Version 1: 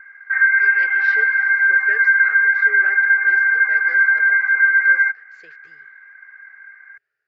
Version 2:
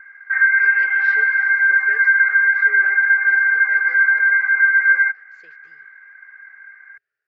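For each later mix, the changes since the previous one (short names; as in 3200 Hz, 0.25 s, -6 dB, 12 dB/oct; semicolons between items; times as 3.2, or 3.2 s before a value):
speech -4.5 dB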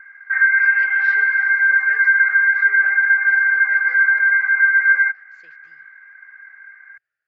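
master: add bell 420 Hz -11 dB 0.35 oct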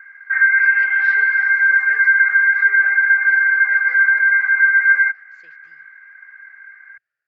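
background: add tilt +1.5 dB/oct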